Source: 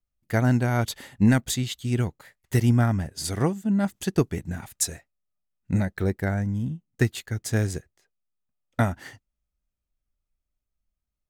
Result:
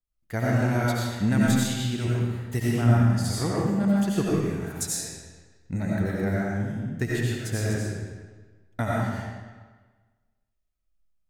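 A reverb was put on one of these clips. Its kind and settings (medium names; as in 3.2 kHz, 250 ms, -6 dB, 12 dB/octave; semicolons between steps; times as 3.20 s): algorithmic reverb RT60 1.4 s, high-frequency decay 0.85×, pre-delay 50 ms, DRR -6 dB; trim -6.5 dB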